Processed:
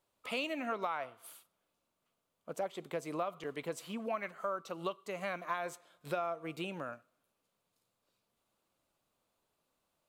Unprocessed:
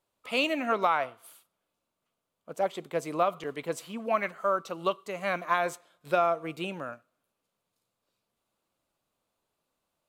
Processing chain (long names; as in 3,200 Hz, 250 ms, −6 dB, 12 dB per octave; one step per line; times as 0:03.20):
downward compressor 2.5 to 1, threshold −38 dBFS, peak gain reduction 12 dB